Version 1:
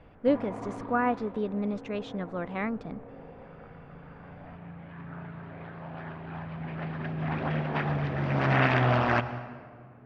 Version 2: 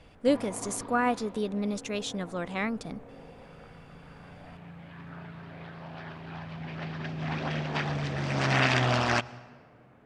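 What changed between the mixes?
background: send -10.0 dB; master: remove LPF 2000 Hz 12 dB/oct

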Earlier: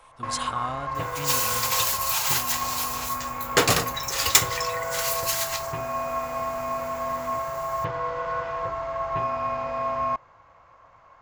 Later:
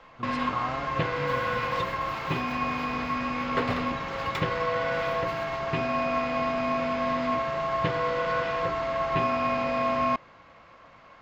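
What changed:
first sound: remove EQ curve 110 Hz 0 dB, 210 Hz -13 dB, 980 Hz 0 dB, 6900 Hz -30 dB; second sound -7.5 dB; master: add air absorption 390 m

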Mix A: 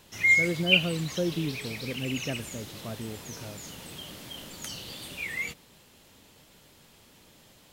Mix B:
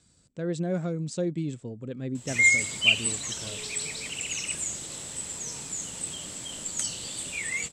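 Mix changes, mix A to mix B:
background: entry +2.15 s; master: add synth low-pass 7800 Hz, resonance Q 14

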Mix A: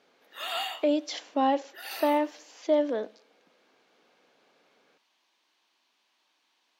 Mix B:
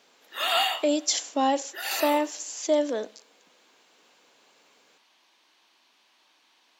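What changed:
speech: remove air absorption 260 m; background +8.5 dB

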